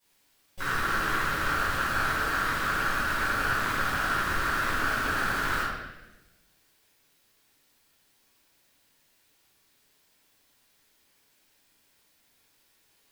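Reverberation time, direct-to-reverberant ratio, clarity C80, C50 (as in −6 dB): 1.0 s, −15.0 dB, 2.0 dB, −2.5 dB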